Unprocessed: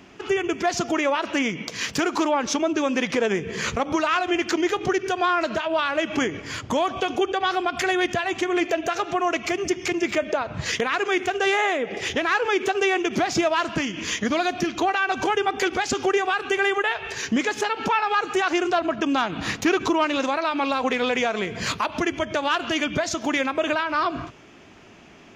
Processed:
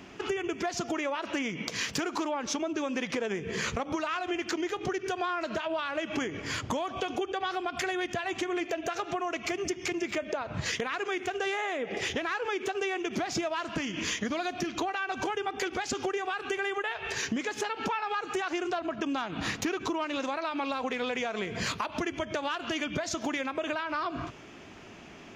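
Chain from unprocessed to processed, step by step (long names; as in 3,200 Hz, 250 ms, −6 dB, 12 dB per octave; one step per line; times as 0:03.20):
downward compressor 6 to 1, threshold −29 dBFS, peak gain reduction 12 dB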